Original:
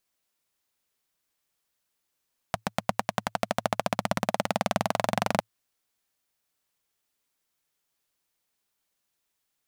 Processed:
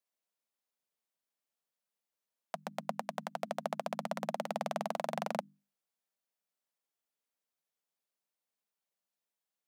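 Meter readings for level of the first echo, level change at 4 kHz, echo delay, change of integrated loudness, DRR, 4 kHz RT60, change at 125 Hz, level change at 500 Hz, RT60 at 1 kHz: none, -13.0 dB, none, -9.5 dB, none, none, -14.0 dB, -7.5 dB, none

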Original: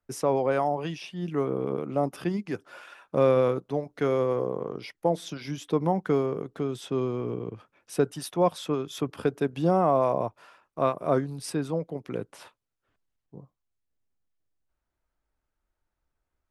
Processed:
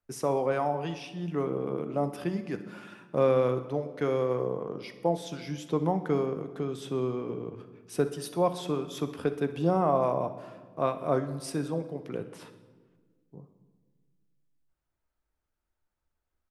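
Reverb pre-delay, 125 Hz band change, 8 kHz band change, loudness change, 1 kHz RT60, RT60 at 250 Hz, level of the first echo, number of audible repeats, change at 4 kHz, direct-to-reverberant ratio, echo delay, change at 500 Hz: 5 ms, -1.5 dB, -2.5 dB, -2.5 dB, 1.3 s, 2.0 s, -16.0 dB, 2, -2.5 dB, 9.0 dB, 63 ms, -2.5 dB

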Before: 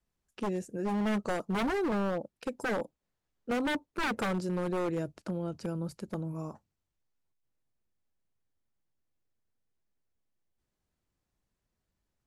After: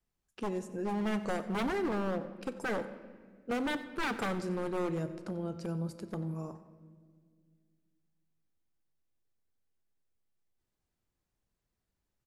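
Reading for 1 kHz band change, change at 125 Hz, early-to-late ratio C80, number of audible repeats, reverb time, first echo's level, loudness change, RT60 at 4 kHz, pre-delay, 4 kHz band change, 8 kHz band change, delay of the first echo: -2.0 dB, -1.5 dB, 13.0 dB, 1, 1.8 s, -18.0 dB, -2.0 dB, 1.2 s, 3 ms, -2.0 dB, -2.0 dB, 92 ms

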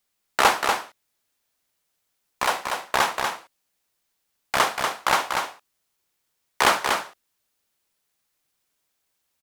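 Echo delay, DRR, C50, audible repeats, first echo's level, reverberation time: 0.24 s, none, none, 1, -5.0 dB, none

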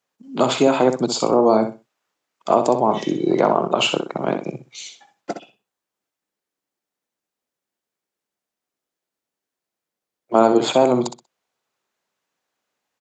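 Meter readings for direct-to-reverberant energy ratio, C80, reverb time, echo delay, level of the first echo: none, none, none, 63 ms, -8.5 dB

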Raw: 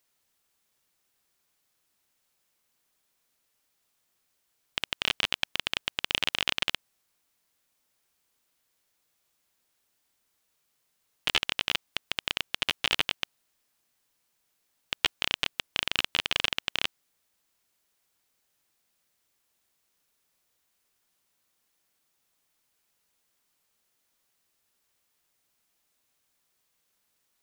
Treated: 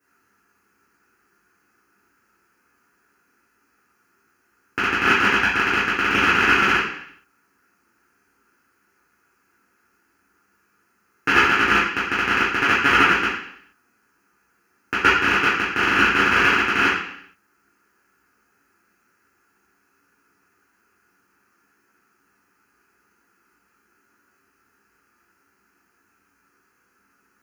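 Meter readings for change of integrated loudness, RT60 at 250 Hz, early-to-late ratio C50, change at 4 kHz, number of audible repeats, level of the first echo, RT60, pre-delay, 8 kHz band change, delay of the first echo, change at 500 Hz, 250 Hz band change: +11.5 dB, 0.70 s, 2.0 dB, +1.0 dB, none, none, 0.70 s, 3 ms, +4.0 dB, none, +16.0 dB, +21.0 dB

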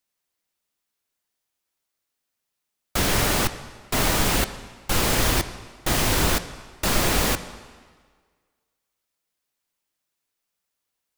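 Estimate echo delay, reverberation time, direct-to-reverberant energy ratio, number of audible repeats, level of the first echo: none, 1.6 s, 11.0 dB, none, none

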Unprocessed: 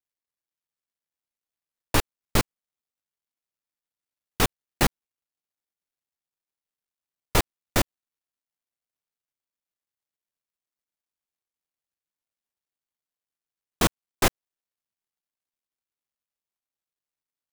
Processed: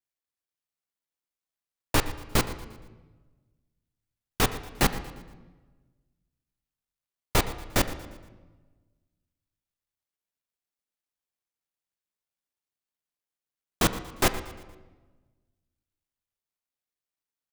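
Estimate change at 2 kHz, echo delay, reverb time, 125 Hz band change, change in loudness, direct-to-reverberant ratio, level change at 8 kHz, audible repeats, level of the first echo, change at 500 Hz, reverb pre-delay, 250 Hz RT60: -1.0 dB, 0.117 s, 1.3 s, -1.0 dB, -1.5 dB, 9.5 dB, -1.5 dB, 3, -16.0 dB, -1.0 dB, 6 ms, 1.6 s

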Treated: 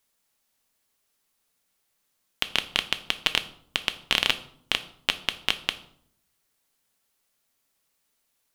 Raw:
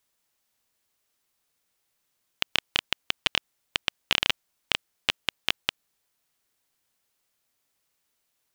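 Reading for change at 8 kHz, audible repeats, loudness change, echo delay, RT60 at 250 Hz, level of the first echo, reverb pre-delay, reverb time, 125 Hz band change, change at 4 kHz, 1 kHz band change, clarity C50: +2.0 dB, none, +1.5 dB, none, 0.90 s, none, 3 ms, 0.65 s, +0.5 dB, +1.5 dB, +1.5 dB, 15.5 dB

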